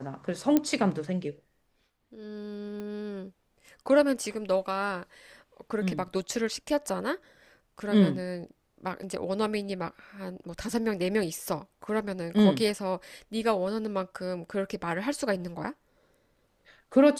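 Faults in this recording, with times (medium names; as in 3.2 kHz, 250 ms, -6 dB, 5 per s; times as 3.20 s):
0.57 s: pop -10 dBFS
2.80 s: pop -27 dBFS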